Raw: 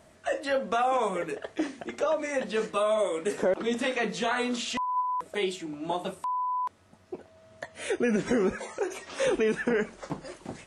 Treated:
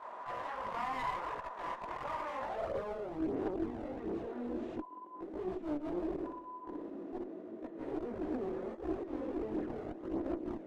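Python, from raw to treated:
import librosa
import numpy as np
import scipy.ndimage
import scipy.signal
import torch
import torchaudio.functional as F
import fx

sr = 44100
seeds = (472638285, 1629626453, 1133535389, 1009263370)

y = fx.bin_compress(x, sr, power=0.4)
y = fx.level_steps(y, sr, step_db=9)
y = fx.filter_sweep_bandpass(y, sr, from_hz=1000.0, to_hz=320.0, start_s=2.36, end_s=3.08, q=6.3)
y = fx.clip_asym(y, sr, top_db=-41.0, bottom_db=-29.0)
y = fx.chorus_voices(y, sr, voices=2, hz=0.73, base_ms=19, depth_ms=4.2, mix_pct=65)
y = fx.room_flutter(y, sr, wall_m=10.4, rt60_s=0.74, at=(6.17, 7.14), fade=0.02)
y = fx.attack_slew(y, sr, db_per_s=140.0)
y = y * 10.0 ** (5.0 / 20.0)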